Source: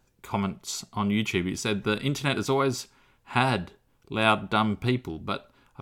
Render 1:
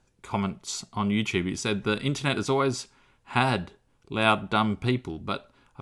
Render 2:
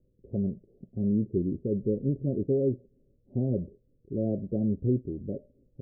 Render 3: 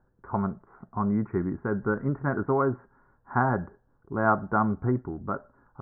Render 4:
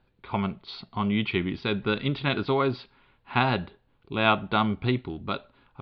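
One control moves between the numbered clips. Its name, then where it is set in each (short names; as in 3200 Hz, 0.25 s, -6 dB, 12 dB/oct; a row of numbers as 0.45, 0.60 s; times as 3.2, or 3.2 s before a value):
steep low-pass, frequency: 11000, 570, 1700, 4400 Hz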